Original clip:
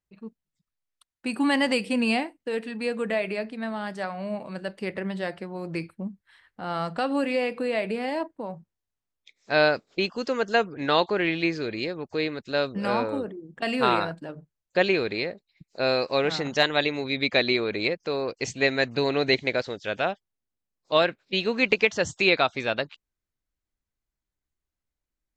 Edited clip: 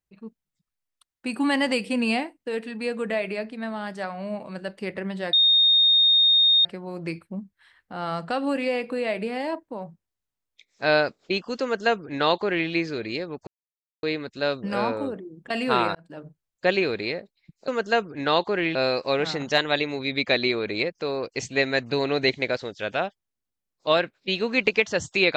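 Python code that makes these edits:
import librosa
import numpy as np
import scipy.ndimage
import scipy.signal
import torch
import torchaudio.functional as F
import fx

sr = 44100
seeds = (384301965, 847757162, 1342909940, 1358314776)

y = fx.edit(x, sr, fx.insert_tone(at_s=5.33, length_s=1.32, hz=3690.0, db=-14.5),
    fx.duplicate(start_s=10.3, length_s=1.07, to_s=15.8),
    fx.insert_silence(at_s=12.15, length_s=0.56),
    fx.fade_in_span(start_s=14.07, length_s=0.28), tone=tone)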